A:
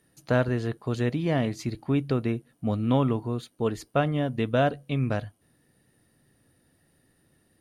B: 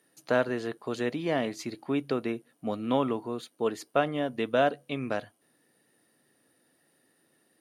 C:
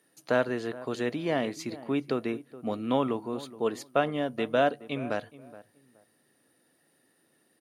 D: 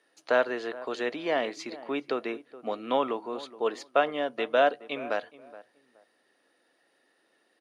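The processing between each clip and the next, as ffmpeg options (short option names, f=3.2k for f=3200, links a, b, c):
-af "highpass=290"
-filter_complex "[0:a]asplit=2[a][b];[b]adelay=422,lowpass=f=1.3k:p=1,volume=-16.5dB,asplit=2[c][d];[d]adelay=422,lowpass=f=1.3k:p=1,volume=0.24[e];[a][c][e]amix=inputs=3:normalize=0"
-af "highpass=430,lowpass=5.2k,volume=3dB"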